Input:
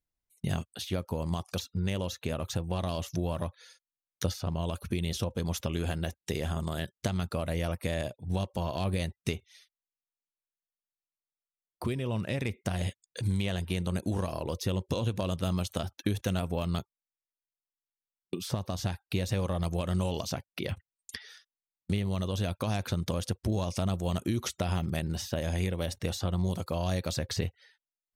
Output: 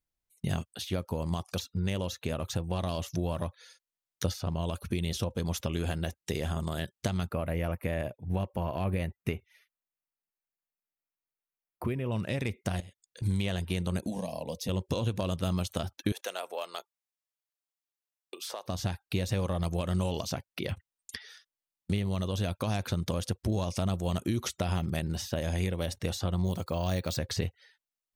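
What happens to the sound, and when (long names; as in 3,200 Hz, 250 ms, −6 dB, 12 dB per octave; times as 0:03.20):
0:07.29–0:12.12: flat-topped bell 5,500 Hz −13.5 dB
0:12.80–0:13.22: downward compressor 4 to 1, threshold −49 dBFS
0:14.07–0:14.69: phaser with its sweep stopped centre 360 Hz, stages 6
0:16.12–0:18.66: high-pass filter 480 Hz 24 dB per octave
0:26.45–0:27.17: bad sample-rate conversion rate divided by 2×, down filtered, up hold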